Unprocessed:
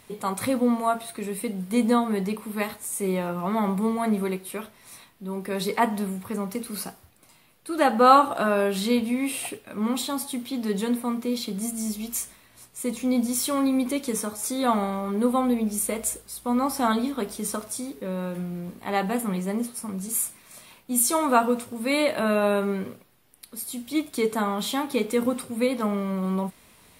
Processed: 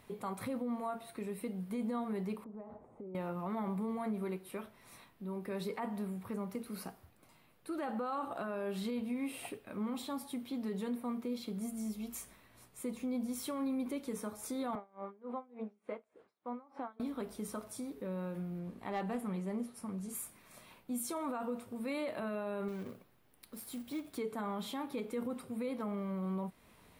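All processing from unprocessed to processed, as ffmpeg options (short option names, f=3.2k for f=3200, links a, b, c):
-filter_complex "[0:a]asettb=1/sr,asplit=3[a][b][c];[a]atrim=end=2.444[d];[b]atrim=start=2.44:end=3.15,asetpts=PTS-STARTPTS,afade=t=in:d=0.004:c=qsin,afade=t=out:st=0.706:d=0.004:c=qsin,lowpass=f=690:t=q:w=1.6,acompressor=threshold=-38dB:ratio=10:attack=3.2:release=140:knee=1:detection=peak[e];[c]atrim=start=3.146[f];[d][e]acrossfade=d=0.004:c1=hsin:c2=qsin[g];[g][f]acrossfade=d=0.004:c1=qsin:c2=hsin,asettb=1/sr,asplit=3[h][i][j];[h]atrim=end=14.754[k];[i]atrim=start=14.75:end=17,asetpts=PTS-STARTPTS,afade=t=in:d=0.004:c=qsin,afade=t=out:st=2.246:d=0.004:c=qsin,highpass=320,lowpass=2.1k,aeval=exprs='val(0)*pow(10,-29*(0.5-0.5*cos(2*PI*3.4*n/s))/20)':c=same[l];[j]atrim=start=16.996[m];[k][l]acrossfade=d=0.004:c1=hsin:c2=qsin[n];[n][m]acrossfade=d=0.004:c1=qsin:c2=hsin,asettb=1/sr,asplit=3[o][p][q];[o]atrim=end=18.594[r];[p]atrim=start=18.59:end=20.15,asetpts=PTS-STARTPTS,afade=t=in:d=0.004:c=qsin,afade=t=out:st=1.556:d=0.004:c=qsin,lowpass=11k,volume=19dB,asoftclip=hard,volume=-19dB[s];[q]atrim=start=20.146[t];[r][s]acrossfade=d=0.004:c1=hsin:c2=qsin[u];[u][t]acrossfade=d=0.004:c1=qsin:c2=hsin,asettb=1/sr,asplit=3[v][w][x];[v]atrim=end=22.684[y];[w]atrim=start=22.68:end=24.18,asetpts=PTS-STARTPTS,afade=t=in:d=0.004:c=qsin,afade=t=out:st=1.496:d=0.004:c=qsin,acompressor=threshold=-30dB:ratio=2:attack=3.2:release=140:knee=1:detection=peak,acrusher=bits=3:mode=log:mix=0:aa=0.000001[z];[x]atrim=start=24.176[aa];[y][z]acrossfade=d=0.004:c1=hsin:c2=qsin[ab];[ab][aa]acrossfade=d=0.004:c1=qsin:c2=hsin,equalizer=f=8.5k:w=0.32:g=-9.5,acompressor=threshold=-40dB:ratio=1.5,alimiter=level_in=1.5dB:limit=-24dB:level=0:latency=1:release=15,volume=-1.5dB,volume=-4.5dB"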